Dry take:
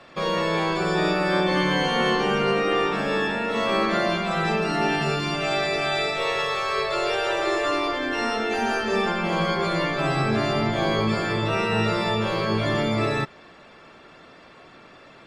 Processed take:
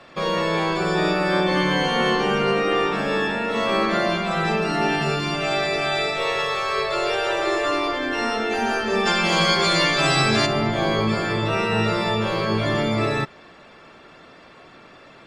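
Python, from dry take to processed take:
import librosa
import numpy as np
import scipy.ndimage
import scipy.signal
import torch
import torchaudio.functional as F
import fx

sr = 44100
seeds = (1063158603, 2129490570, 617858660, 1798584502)

y = fx.peak_eq(x, sr, hz=6300.0, db=14.5, octaves=2.6, at=(9.05, 10.45), fade=0.02)
y = F.gain(torch.from_numpy(y), 1.5).numpy()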